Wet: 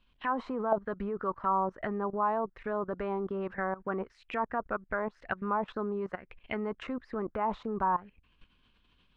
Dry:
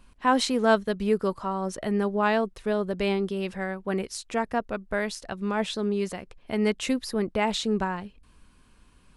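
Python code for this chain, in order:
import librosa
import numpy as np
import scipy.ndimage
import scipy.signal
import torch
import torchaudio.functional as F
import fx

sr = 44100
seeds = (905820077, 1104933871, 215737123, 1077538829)

y = fx.dynamic_eq(x, sr, hz=150.0, q=2.0, threshold_db=-43.0, ratio=4.0, max_db=-5)
y = fx.level_steps(y, sr, step_db=17)
y = fx.envelope_lowpass(y, sr, base_hz=490.0, top_hz=3400.0, q=4.0, full_db=-26.0, direction='down')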